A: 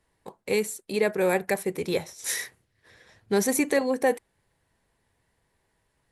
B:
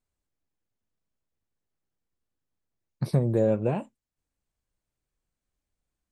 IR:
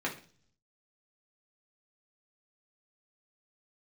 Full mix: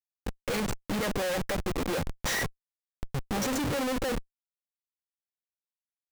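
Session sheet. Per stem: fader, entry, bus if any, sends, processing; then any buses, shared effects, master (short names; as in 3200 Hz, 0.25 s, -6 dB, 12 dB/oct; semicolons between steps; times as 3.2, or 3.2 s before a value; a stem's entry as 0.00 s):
-2.0 dB, 0.00 s, no send, comb 3.7 ms, depth 73%
-16.0 dB, 0.00 s, no send, dry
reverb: off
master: LPF 6900 Hz 24 dB/oct; Schmitt trigger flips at -35 dBFS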